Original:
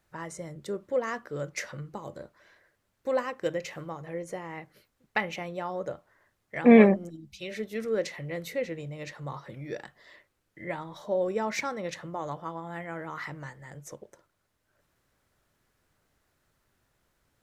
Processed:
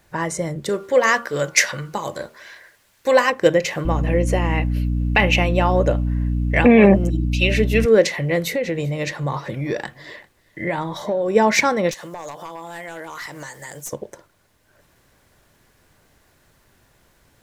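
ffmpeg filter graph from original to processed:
-filter_complex "[0:a]asettb=1/sr,asplit=3[a][b][c];[a]atrim=end=0.694[d];[b]atrim=start=0.69:end=3.3,asetpts=PTS-STARTPTS,afade=t=in:d=0.004:c=qsin,afade=t=out:st=2.606:d=0.004:c=qsin,tiltshelf=f=820:g=-6.5,bandreject=f=77.98:t=h:w=4,bandreject=f=155.96:t=h:w=4,bandreject=f=233.94:t=h:w=4,bandreject=f=311.92:t=h:w=4,bandreject=f=389.9:t=h:w=4,bandreject=f=467.88:t=h:w=4,bandreject=f=545.86:t=h:w=4,bandreject=f=623.84:t=h:w=4,bandreject=f=701.82:t=h:w=4,bandreject=f=779.8:t=h:w=4,bandreject=f=857.78:t=h:w=4,bandreject=f=935.76:t=h:w=4,bandreject=f=1.01374k:t=h:w=4,bandreject=f=1.09172k:t=h:w=4,bandreject=f=1.1697k:t=h:w=4,bandreject=f=1.24768k:t=h:w=4,bandreject=f=1.32566k:t=h:w=4,bandreject=f=1.40364k:t=h:w=4,bandreject=f=1.48162k:t=h:w=4[e];[c]atrim=start=3.296[f];[d][e]acrossfade=d=0.004:c1=hsin:c2=qsin[g];[g][f]acrossfade=d=0.004:c1=qsin:c2=hsin,asettb=1/sr,asplit=3[h][i][j];[h]atrim=end=3.854[k];[i]atrim=start=3.85:end=7.86,asetpts=PTS-STARTPTS,afade=t=in:d=0.004:c=qsin,afade=t=out:st=4.006:d=0.004:c=qsin,aeval=exprs='val(0)+0.02*(sin(2*PI*60*n/s)+sin(2*PI*2*60*n/s)/2+sin(2*PI*3*60*n/s)/3+sin(2*PI*4*60*n/s)/4+sin(2*PI*5*60*n/s)/5)':c=same,equalizer=f=2.7k:w=6.4:g=12.5[l];[j]atrim=start=7.856[m];[k][l]acrossfade=d=0.004:c1=hsin:c2=qsin[n];[n][m]acrossfade=d=0.004:c1=qsin:c2=hsin,asettb=1/sr,asplit=3[o][p][q];[o]atrim=end=8.394[r];[p]atrim=start=8.39:end=11.35,asetpts=PTS-STARTPTS,afade=t=in:d=0.004:c=qsin,afade=t=out:st=2.956:d=0.004:c=qsin,acompressor=threshold=-33dB:ratio=6:attack=3.2:release=140:knee=1:detection=peak,aecho=1:1:389:0.0668,atrim=end_sample=130536[s];[q]atrim=start=11.346[t];[r][s]acrossfade=d=0.004:c1=hsin:c2=qsin[u];[u][t]acrossfade=d=0.004:c1=qsin:c2=hsin,asettb=1/sr,asplit=3[v][w][x];[v]atrim=end=11.914[y];[w]atrim=start=11.91:end=13.93,asetpts=PTS-STARTPTS,afade=t=in:d=0.004:c=qsin,afade=t=out:st=2.016:d=0.004:c=qsin,bass=f=250:g=-12,treble=f=4k:g=15,aeval=exprs='clip(val(0),-1,0.0237)':c=same,acompressor=threshold=-46dB:ratio=4:attack=3.2:release=140:knee=1:detection=peak[z];[x]atrim=start=13.926[aa];[y][z]acrossfade=d=0.004:c1=hsin:c2=qsin[ab];[ab][aa]acrossfade=d=0.004:c1=qsin:c2=hsin,bandreject=f=1.3k:w=11,alimiter=level_in=16dB:limit=-1dB:release=50:level=0:latency=1,volume=-1dB"

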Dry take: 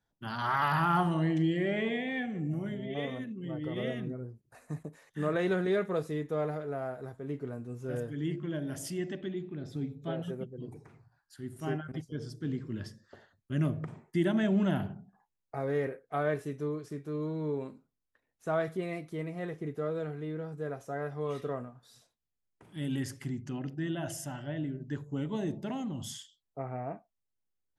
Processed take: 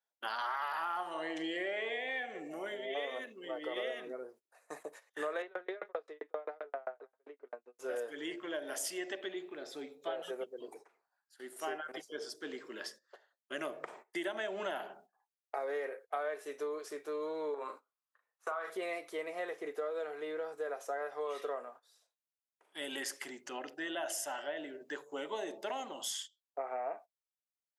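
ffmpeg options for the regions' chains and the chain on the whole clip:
-filter_complex "[0:a]asettb=1/sr,asplit=3[a][b][c];[a]atrim=end=5.424[d];[b]atrim=start=5.42:end=7.79,asetpts=PTS-STARTPTS,afade=t=in:d=0.004:c=qsin,afade=t=out:st=2.366:d=0.004:c=qsin,highpass=210,lowpass=2.7k,aeval=exprs='val(0)*pow(10,-35*if(lt(mod(7.6*n/s,1),2*abs(7.6)/1000),1-mod(7.6*n/s,1)/(2*abs(7.6)/1000),(mod(7.6*n/s,1)-2*abs(7.6)/1000)/(1-2*abs(7.6)/1000))/20)':c=same[e];[c]atrim=start=7.786[f];[d][e]acrossfade=d=0.004:c1=hsin:c2=qsin[g];[g][f]acrossfade=d=0.004:c1=qsin:c2=hsin,asettb=1/sr,asplit=3[h][i][j];[h]atrim=end=17.544[k];[i]atrim=start=17.54:end=18.7,asetpts=PTS-STARTPTS,afade=t=in:d=0.004:c=qsin,afade=t=out:st=1.156:d=0.004:c=qsin,equalizer=f=1.2k:t=o:w=0.83:g=13.5,acompressor=threshold=-36dB:ratio=4:attack=3.2:release=140:knee=1:detection=peak,asplit=2[l][m];[m]adelay=39,volume=-7.5dB[n];[l][n]amix=inputs=2:normalize=0,atrim=end_sample=51156[o];[j]atrim=start=18.696[p];[k][o]acrossfade=d=0.004:c1=hsin:c2=qsin[q];[q][p]acrossfade=d=0.004:c1=qsin:c2=hsin,agate=range=-15dB:threshold=-50dB:ratio=16:detection=peak,highpass=f=470:w=0.5412,highpass=f=470:w=1.3066,acompressor=threshold=-41dB:ratio=6,volume=6.5dB"

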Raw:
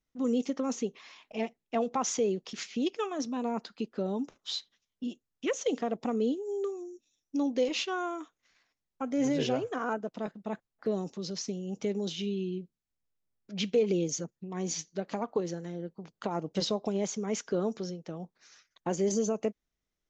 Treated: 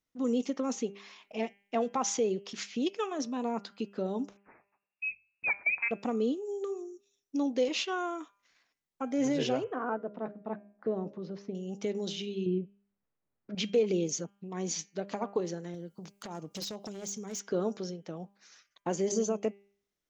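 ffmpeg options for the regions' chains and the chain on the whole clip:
-filter_complex "[0:a]asettb=1/sr,asplit=3[a][b][c];[a]atrim=end=4.374[d];[b]atrim=start=4.37:end=5.91,asetpts=PTS-STARTPTS,afade=t=in:d=0.004:c=qsin,afade=t=out:st=1.536:d=0.004:c=qsin,lowpass=f=2.4k:t=q:w=0.5098,lowpass=f=2.4k:t=q:w=0.6013,lowpass=f=2.4k:t=q:w=0.9,lowpass=f=2.4k:t=q:w=2.563,afreqshift=-2800,bandreject=f=50:t=h:w=6,bandreject=f=100:t=h:w=6,bandreject=f=150:t=h:w=6,bandreject=f=200:t=h:w=6[e];[c]atrim=start=5.906[f];[d][e]acrossfade=d=0.004:c1=hsin:c2=qsin[g];[g][f]acrossfade=d=0.004:c1=qsin:c2=hsin,asettb=1/sr,asplit=3[h][i][j];[h]atrim=end=9.644[k];[i]atrim=start=9.64:end=11.55,asetpts=PTS-STARTPTS,afade=t=in:d=0.004:c=qsin,afade=t=out:st=1.906:d=0.004:c=qsin,lowpass=1.5k,bandreject=f=69.14:t=h:w=4,bandreject=f=138.28:t=h:w=4,bandreject=f=207.42:t=h:w=4,bandreject=f=276.56:t=h:w=4,bandreject=f=345.7:t=h:w=4,bandreject=f=414.84:t=h:w=4,bandreject=f=483.98:t=h:w=4,bandreject=f=553.12:t=h:w=4,bandreject=f=622.26:t=h:w=4,bandreject=f=691.4:t=h:w=4[l];[j]atrim=start=11.546[m];[k][l]acrossfade=d=0.004:c1=hsin:c2=qsin[n];[n][m]acrossfade=d=0.004:c1=qsin:c2=hsin,asettb=1/sr,asplit=3[o][p][q];[o]atrim=end=12.464[r];[p]atrim=start=12.46:end=13.55,asetpts=PTS-STARTPTS,afade=t=in:d=0.004:c=qsin,afade=t=out:st=1.086:d=0.004:c=qsin,lowpass=1.7k,acontrast=70[s];[q]atrim=start=13.546[t];[r][s]acrossfade=d=0.004:c1=hsin:c2=qsin[u];[u][t]acrossfade=d=0.004:c1=qsin:c2=hsin,asettb=1/sr,asplit=3[v][w][x];[v]atrim=end=15.744[y];[w]atrim=start=15.74:end=17.41,asetpts=PTS-STARTPTS,afade=t=in:d=0.004:c=qsin,afade=t=out:st=1.666:d=0.004:c=qsin,bass=f=250:g=5,treble=f=4k:g=14,acompressor=threshold=-39dB:ratio=2.5:attack=3.2:release=140:knee=1:detection=peak,aeval=exprs='0.0266*(abs(mod(val(0)/0.0266+3,4)-2)-1)':c=same[z];[x]atrim=start=17.406[aa];[y][z]acrossfade=d=0.004:c1=hsin:c2=qsin[ab];[ab][aa]acrossfade=d=0.004:c1=qsin:c2=hsin,lowshelf=f=76:g=-11.5,bandreject=f=200:t=h:w=4,bandreject=f=400:t=h:w=4,bandreject=f=600:t=h:w=4,bandreject=f=800:t=h:w=4,bandreject=f=1k:t=h:w=4,bandreject=f=1.2k:t=h:w=4,bandreject=f=1.4k:t=h:w=4,bandreject=f=1.6k:t=h:w=4,bandreject=f=1.8k:t=h:w=4,bandreject=f=2k:t=h:w=4,bandreject=f=2.2k:t=h:w=4,bandreject=f=2.4k:t=h:w=4,bandreject=f=2.6k:t=h:w=4,bandreject=f=2.8k:t=h:w=4,bandreject=f=3k:t=h:w=4,bandreject=f=3.2k:t=h:w=4"

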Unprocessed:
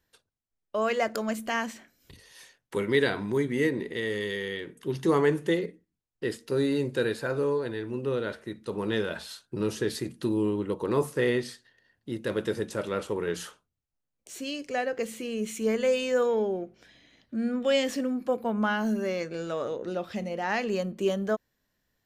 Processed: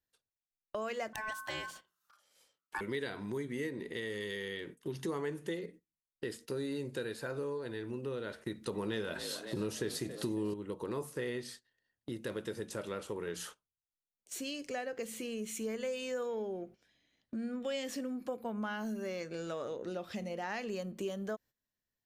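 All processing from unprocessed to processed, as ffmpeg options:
-filter_complex "[0:a]asettb=1/sr,asplit=3[a][b][c];[a]atrim=end=1.134[d];[b]atrim=start=1.13:end=2.81,asetpts=PTS-STARTPTS,afade=t=in:d=0.004:c=qsin,afade=t=out:st=1.676:d=0.004:c=qsin,bass=f=250:g=5,treble=f=4k:g=0,aeval=exprs='val(0)*sin(2*PI*1300*n/s)':c=same,bandreject=f=86.86:t=h:w=4,bandreject=f=173.72:t=h:w=4,bandreject=f=260.58:t=h:w=4,bandreject=f=347.44:t=h:w=4[e];[c]atrim=start=2.806[f];[d][e]acrossfade=d=0.004:c1=hsin:c2=qsin[g];[g][f]acrossfade=d=0.004:c1=qsin:c2=hsin,asettb=1/sr,asplit=3[h][i][j];[h]atrim=end=8.454[k];[i]atrim=start=8.45:end=10.54,asetpts=PTS-STARTPTS,afade=t=in:d=0.004:c=qsin,afade=t=out:st=2.086:d=0.004:c=qsin,acontrast=86,asplit=7[l][m][n][o][p][q][r];[m]adelay=275,afreqshift=50,volume=-16dB[s];[n]adelay=550,afreqshift=100,volume=-20.3dB[t];[o]adelay=825,afreqshift=150,volume=-24.6dB[u];[p]adelay=1100,afreqshift=200,volume=-28.9dB[v];[q]adelay=1375,afreqshift=250,volume=-33.2dB[w];[r]adelay=1650,afreqshift=300,volume=-37.5dB[x];[l][s][t][u][v][w][x]amix=inputs=7:normalize=0,atrim=end_sample=92169[y];[j]atrim=start=10.536[z];[k][y]acrossfade=d=0.004:c1=hsin:c2=qsin[aa];[aa][z]acrossfade=d=0.004:c1=qsin:c2=hsin,agate=range=-15dB:threshold=-45dB:ratio=16:detection=peak,highshelf=f=5.1k:g=5.5,acompressor=threshold=-36dB:ratio=3,volume=-2dB"

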